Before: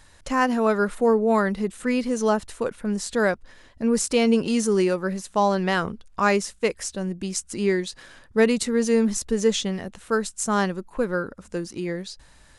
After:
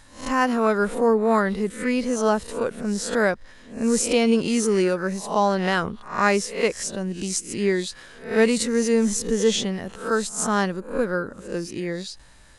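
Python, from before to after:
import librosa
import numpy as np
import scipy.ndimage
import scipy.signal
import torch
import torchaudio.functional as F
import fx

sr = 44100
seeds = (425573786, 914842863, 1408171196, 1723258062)

y = fx.spec_swells(x, sr, rise_s=0.41)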